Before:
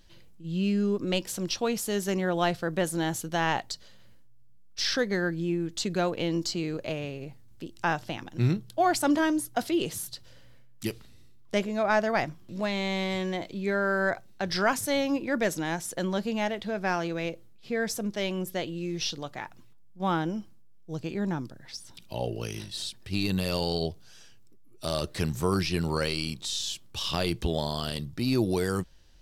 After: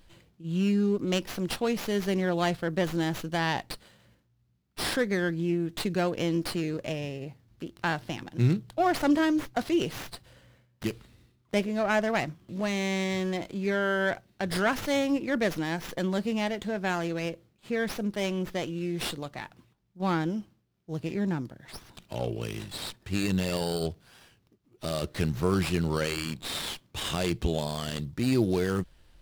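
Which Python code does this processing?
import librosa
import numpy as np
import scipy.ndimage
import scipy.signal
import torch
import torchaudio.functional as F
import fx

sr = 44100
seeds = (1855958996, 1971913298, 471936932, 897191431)

y = fx.dynamic_eq(x, sr, hz=890.0, q=0.99, threshold_db=-41.0, ratio=4.0, max_db=-4)
y = fx.running_max(y, sr, window=5)
y = y * librosa.db_to_amplitude(1.5)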